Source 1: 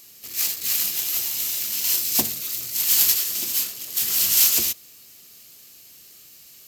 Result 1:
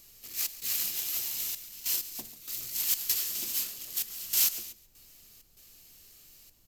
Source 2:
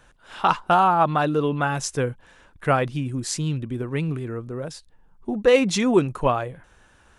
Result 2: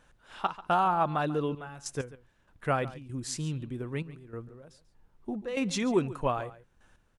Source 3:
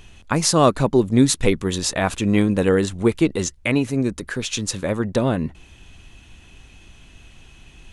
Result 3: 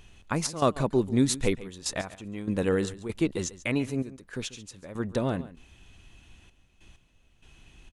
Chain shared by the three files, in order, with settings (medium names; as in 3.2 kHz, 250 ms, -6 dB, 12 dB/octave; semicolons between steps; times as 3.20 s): trance gate "xxx.xxxxxx..x..." 97 bpm -12 dB; added noise brown -58 dBFS; delay 140 ms -17 dB; trim -8 dB